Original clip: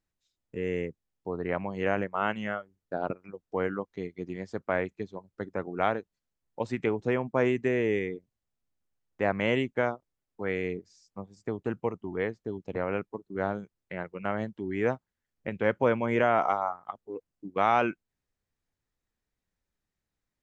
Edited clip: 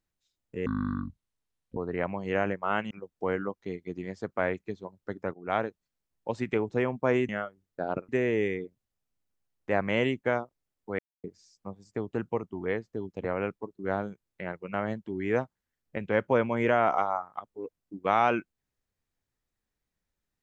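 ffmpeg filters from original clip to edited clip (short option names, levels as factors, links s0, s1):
-filter_complex "[0:a]asplit=9[s0][s1][s2][s3][s4][s5][s6][s7][s8];[s0]atrim=end=0.664[s9];[s1]atrim=start=0.66:end=1.28,asetpts=PTS-STARTPTS,asetrate=24696,aresample=44100[s10];[s2]atrim=start=1.276:end=2.422[s11];[s3]atrim=start=3.218:end=5.65,asetpts=PTS-STARTPTS,afade=t=out:st=2.428:d=0.004:c=hsin:silence=0.0944061[s12];[s4]atrim=start=5.65:end=7.602,asetpts=PTS-STARTPTS,afade=t=in:d=0.26:silence=0.0944061[s13];[s5]atrim=start=2.418:end=3.222[s14];[s6]atrim=start=7.598:end=10.5,asetpts=PTS-STARTPTS,afade=t=out:st=2.898:d=0.004:c=hsin[s15];[s7]atrim=start=10.5:end=10.75,asetpts=PTS-STARTPTS,volume=0[s16];[s8]atrim=start=10.75,asetpts=PTS-STARTPTS,afade=t=in:d=0.004:c=hsin[s17];[s9][s10]acrossfade=d=0.004:c1=hsin:c2=hsin[s18];[s18][s11]acrossfade=d=0.004:c1=hsin:c2=hsin[s19];[s12][s13]concat=n=2:v=0:a=1[s20];[s19][s20]acrossfade=d=0.004:c1=hsin:c2=hsin[s21];[s21][s14]acrossfade=d=0.004:c1=hsin:c2=hsin[s22];[s15][s16][s17]concat=n=3:v=0:a=1[s23];[s22][s23]acrossfade=d=0.004:c1=hsin:c2=hsin"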